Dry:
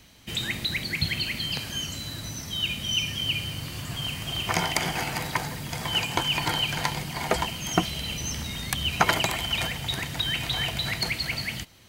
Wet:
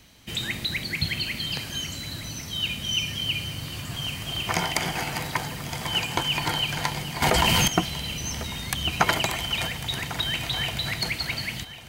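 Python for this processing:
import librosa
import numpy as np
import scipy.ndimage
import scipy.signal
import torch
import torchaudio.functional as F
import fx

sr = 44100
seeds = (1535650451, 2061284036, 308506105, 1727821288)

y = fx.echo_feedback(x, sr, ms=1098, feedback_pct=44, wet_db=-15)
y = fx.env_flatten(y, sr, amount_pct=100, at=(7.22, 7.68))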